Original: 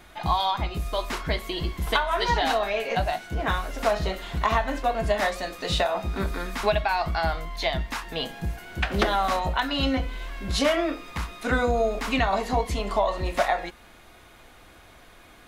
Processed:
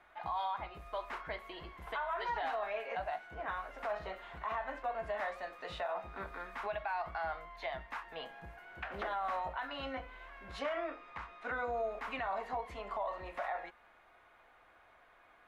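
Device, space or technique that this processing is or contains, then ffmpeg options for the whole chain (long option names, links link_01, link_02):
DJ mixer with the lows and highs turned down: -filter_complex "[0:a]acrossover=split=540 2300:gain=0.158 1 0.1[link_01][link_02][link_03];[link_01][link_02][link_03]amix=inputs=3:normalize=0,alimiter=limit=-21dB:level=0:latency=1:release=38,asettb=1/sr,asplit=3[link_04][link_05][link_06];[link_04]atrim=end=10.604[link_07];[link_05]atrim=start=10.6:end=11.65,asetpts=PTS-STARTPTS,afade=type=in:duration=0.004:curve=qsin,afade=type=out:start_time=1.046:duration=0.004:curve=qsin,lowpass=6900[link_08];[link_06]atrim=start=11.646[link_09];[link_07][link_08]acrossfade=duration=0.004:curve1=hsin:curve2=qsin[link_10];[link_10][link_09]acrossfade=duration=0.004:curve1=qsin:curve2=hsin,volume=-7.5dB"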